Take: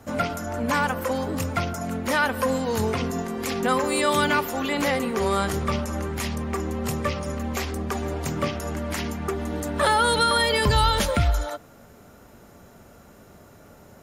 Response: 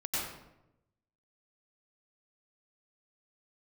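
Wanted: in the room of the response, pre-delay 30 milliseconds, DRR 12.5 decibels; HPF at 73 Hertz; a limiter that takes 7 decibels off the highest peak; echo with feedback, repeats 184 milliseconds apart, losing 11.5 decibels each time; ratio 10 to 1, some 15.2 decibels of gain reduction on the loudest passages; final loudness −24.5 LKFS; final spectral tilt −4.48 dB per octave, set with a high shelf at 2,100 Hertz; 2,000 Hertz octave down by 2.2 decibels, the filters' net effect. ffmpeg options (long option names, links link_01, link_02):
-filter_complex "[0:a]highpass=73,equalizer=frequency=2000:width_type=o:gain=-7,highshelf=frequency=2100:gain=7,acompressor=threshold=-32dB:ratio=10,alimiter=level_in=2.5dB:limit=-24dB:level=0:latency=1,volume=-2.5dB,aecho=1:1:184|368|552:0.266|0.0718|0.0194,asplit=2[link_01][link_02];[1:a]atrim=start_sample=2205,adelay=30[link_03];[link_02][link_03]afir=irnorm=-1:irlink=0,volume=-18dB[link_04];[link_01][link_04]amix=inputs=2:normalize=0,volume=11dB"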